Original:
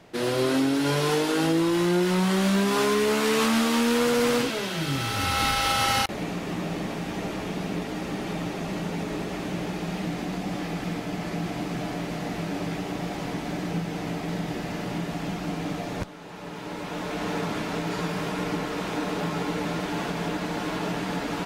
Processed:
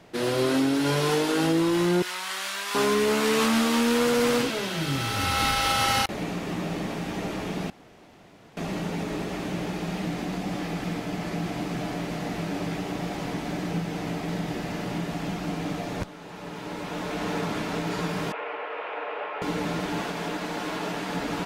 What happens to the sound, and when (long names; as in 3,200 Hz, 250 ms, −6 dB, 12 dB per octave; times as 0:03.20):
0:02.02–0:02.75: high-pass filter 1,200 Hz
0:07.70–0:08.57: fill with room tone
0:18.32–0:19.42: Chebyshev band-pass filter 480–2,700 Hz, order 3
0:20.01–0:21.15: parametric band 69 Hz −9 dB 3 octaves